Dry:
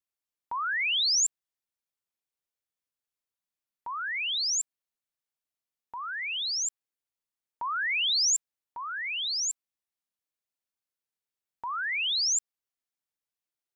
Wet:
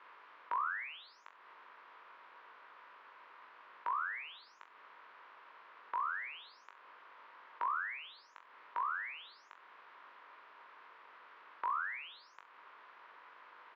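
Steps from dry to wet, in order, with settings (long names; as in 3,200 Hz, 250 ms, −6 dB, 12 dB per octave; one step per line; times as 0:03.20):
compressor on every frequency bin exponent 0.4
downward compressor 6 to 1, threshold −29 dBFS, peak gain reduction 9.5 dB
four-pole ladder band-pass 560 Hz, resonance 30%
high-frequency loss of the air 290 metres
reverse bouncing-ball delay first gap 20 ms, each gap 1.1×, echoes 5
level +12.5 dB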